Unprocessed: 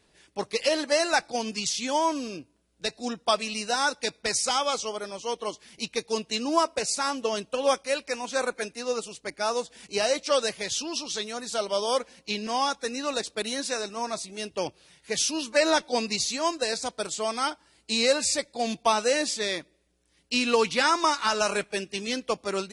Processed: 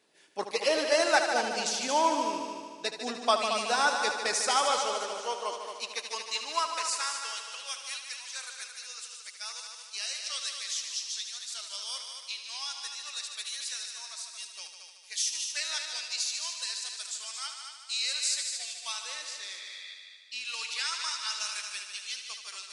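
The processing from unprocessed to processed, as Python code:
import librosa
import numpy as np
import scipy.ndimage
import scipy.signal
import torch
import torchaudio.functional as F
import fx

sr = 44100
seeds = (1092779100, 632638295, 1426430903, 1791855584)

p1 = fx.tilt_eq(x, sr, slope=-3.0, at=(19.02, 20.45))
p2 = fx.spec_repair(p1, sr, seeds[0], start_s=19.6, length_s=0.32, low_hz=1200.0, high_hz=4800.0, source='before')
p3 = fx.dynamic_eq(p2, sr, hz=1200.0, q=0.96, threshold_db=-37.0, ratio=4.0, max_db=4)
p4 = fx.filter_sweep_highpass(p3, sr, from_hz=280.0, to_hz=3200.0, start_s=4.57, end_s=7.73, q=0.73)
p5 = p4 + fx.echo_heads(p4, sr, ms=75, heads='all three', feedback_pct=54, wet_db=-10.0, dry=0)
y = p5 * 10.0 ** (-3.5 / 20.0)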